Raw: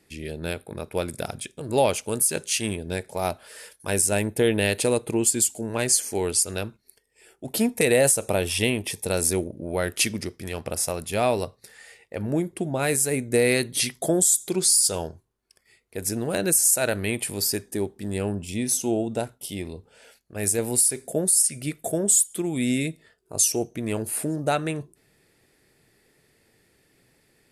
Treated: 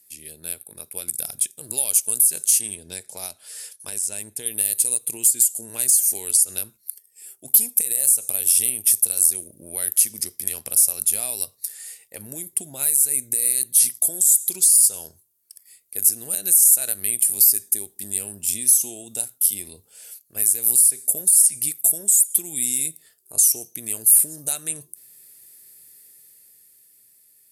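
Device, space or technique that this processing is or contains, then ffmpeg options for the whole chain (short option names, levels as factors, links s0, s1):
FM broadcast chain: -filter_complex "[0:a]highpass=63,dynaudnorm=f=140:g=21:m=3.55,acrossover=split=2100|4400[s0][s1][s2];[s0]acompressor=threshold=0.0708:ratio=4[s3];[s1]acompressor=threshold=0.0158:ratio=4[s4];[s2]acompressor=threshold=0.112:ratio=4[s5];[s3][s4][s5]amix=inputs=3:normalize=0,aemphasis=mode=production:type=75fm,alimiter=limit=0.708:level=0:latency=1:release=187,asoftclip=type=hard:threshold=0.501,lowpass=f=15000:w=0.5412,lowpass=f=15000:w=1.3066,aemphasis=mode=production:type=75fm,asettb=1/sr,asplit=3[s6][s7][s8];[s6]atrim=end=2.614[s9];[s7]atrim=start=2.61:end=4.46,asetpts=PTS-STARTPTS,afade=t=in:d=0.004:c=qsin,afade=t=out:st=1.846:d=0.004:c=qsin,lowpass=6600[s10];[s8]atrim=start=4.456[s11];[s9][s10]acrossfade=d=0.004:c1=hsin:c2=qsin[s12];[s12][s11]acrossfade=d=0.004:c1=qsin:c2=hsin,volume=0.2"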